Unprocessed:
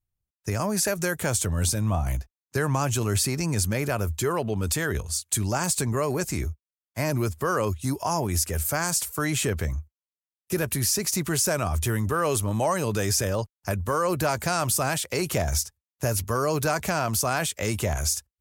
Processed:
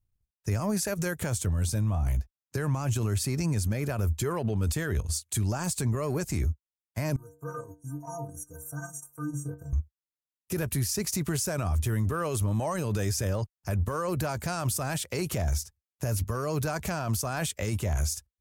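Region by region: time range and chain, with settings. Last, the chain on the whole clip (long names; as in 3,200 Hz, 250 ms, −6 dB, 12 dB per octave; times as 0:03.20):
0:07.16–0:09.73: linear-phase brick-wall band-stop 1,600–5,700 Hz + stiff-string resonator 140 Hz, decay 0.58 s, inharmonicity 0.03
whole clip: low-shelf EQ 190 Hz +9 dB; transient designer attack −2 dB, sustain −8 dB; brickwall limiter −20.5 dBFS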